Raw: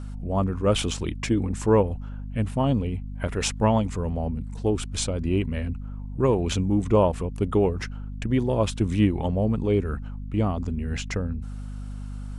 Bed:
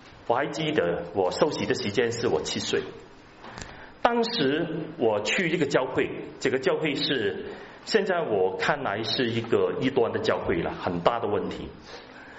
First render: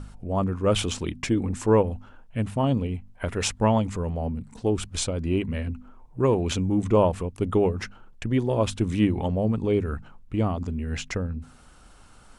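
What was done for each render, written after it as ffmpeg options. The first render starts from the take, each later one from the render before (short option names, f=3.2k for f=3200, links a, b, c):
-af "bandreject=f=50:t=h:w=4,bandreject=f=100:t=h:w=4,bandreject=f=150:t=h:w=4,bandreject=f=200:t=h:w=4,bandreject=f=250:t=h:w=4"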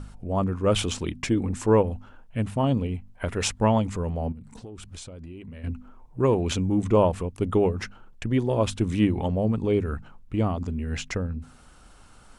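-filter_complex "[0:a]asettb=1/sr,asplit=3[a][b][c];[a]atrim=end=4.324[d];[b]atrim=start=4.32:end=5.64,asetpts=PTS-STARTPTS,afade=t=in:d=0.004:c=qsin,afade=t=out:st=1.316:d=0.004:c=qsin,acompressor=threshold=-37dB:ratio=10:attack=3.2:release=140:knee=1:detection=peak[e];[c]atrim=start=5.636[f];[d][e]acrossfade=d=0.004:c1=hsin:c2=qsin[g];[g][f]acrossfade=d=0.004:c1=qsin:c2=hsin"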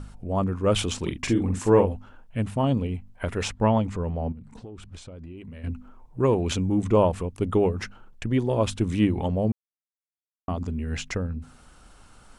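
-filter_complex "[0:a]asettb=1/sr,asplit=3[a][b][c];[a]atrim=end=0.994[d];[b]atrim=start=0.99:end=1.95,asetpts=PTS-STARTPTS,afade=t=in:d=0.004:c=qsin,afade=t=out:st=0.956:d=0.004:c=qsin,asplit=2[e][f];[f]adelay=43,volume=-6dB[g];[e][g]amix=inputs=2:normalize=0,atrim=end_sample=42336[h];[c]atrim=start=1.946[i];[d][h]acrossfade=d=0.004:c1=hsin:c2=qsin[j];[j][i]acrossfade=d=0.004:c1=qsin:c2=hsin,asettb=1/sr,asplit=3[k][l][m];[k]atrim=end=3.434[n];[l]atrim=start=3.43:end=5.38,asetpts=PTS-STARTPTS,afade=t=in:d=0.004:c=qsin,afade=t=out:st=1.946:d=0.004:c=qsin,highshelf=f=5.3k:g=-11[o];[m]atrim=start=5.376[p];[n][o]acrossfade=d=0.004:c1=hsin:c2=qsin[q];[q][p]acrossfade=d=0.004:c1=qsin:c2=hsin,asplit=3[r][s][t];[r]atrim=end=9.52,asetpts=PTS-STARTPTS,afade=t=out:st=9.516:d=0.004:c=hsin[u];[s]atrim=start=9.52:end=10.48,asetpts=PTS-STARTPTS,volume=0[v];[t]atrim=start=10.48,asetpts=PTS-STARTPTS,afade=t=in:d=0.004:c=hsin[w];[u][v][w]concat=n=3:v=0:a=1"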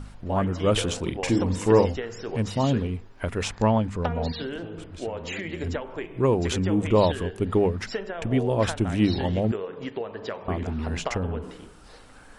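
-filter_complex "[1:a]volume=-9dB[a];[0:a][a]amix=inputs=2:normalize=0"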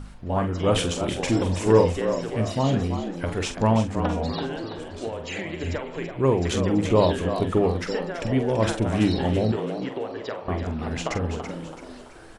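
-filter_complex "[0:a]asplit=2[a][b];[b]adelay=45,volume=-9dB[c];[a][c]amix=inputs=2:normalize=0,asplit=2[d][e];[e]asplit=5[f][g][h][i][j];[f]adelay=332,afreqshift=82,volume=-9dB[k];[g]adelay=664,afreqshift=164,volume=-16.7dB[l];[h]adelay=996,afreqshift=246,volume=-24.5dB[m];[i]adelay=1328,afreqshift=328,volume=-32.2dB[n];[j]adelay=1660,afreqshift=410,volume=-40dB[o];[k][l][m][n][o]amix=inputs=5:normalize=0[p];[d][p]amix=inputs=2:normalize=0"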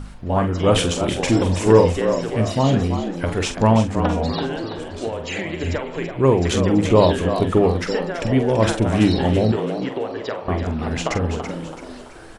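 -af "volume=5dB,alimiter=limit=-2dB:level=0:latency=1"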